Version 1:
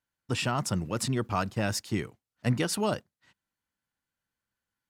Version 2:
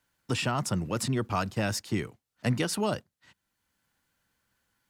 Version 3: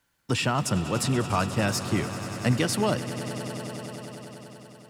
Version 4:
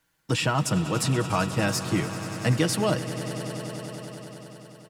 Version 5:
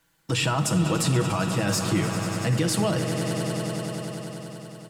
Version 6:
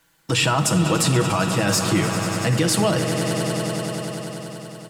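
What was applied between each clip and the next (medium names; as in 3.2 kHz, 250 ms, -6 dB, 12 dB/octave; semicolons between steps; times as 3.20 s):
three bands compressed up and down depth 40%
echo with a slow build-up 96 ms, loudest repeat 5, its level -16 dB; trim +3.5 dB
comb 6.3 ms, depth 48%
peak limiter -20 dBFS, peak gain reduction 10 dB; on a send at -9 dB: peaking EQ 8.2 kHz +8 dB 0.77 oct + reverberation RT60 0.95 s, pre-delay 6 ms; on the sum: trim +4 dB
bass shelf 270 Hz -4 dB; trim +6 dB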